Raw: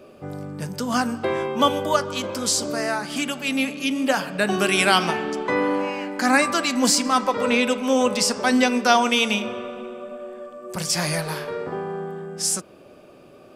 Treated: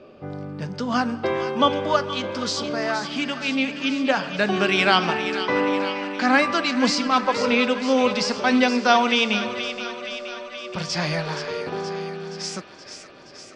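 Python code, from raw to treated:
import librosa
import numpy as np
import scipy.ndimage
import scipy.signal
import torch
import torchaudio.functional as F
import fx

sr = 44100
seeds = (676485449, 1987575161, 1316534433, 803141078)

y = scipy.signal.sosfilt(scipy.signal.butter(4, 5100.0, 'lowpass', fs=sr, output='sos'), x)
y = fx.echo_wet_highpass(y, sr, ms=473, feedback_pct=66, hz=1400.0, wet_db=-9.0)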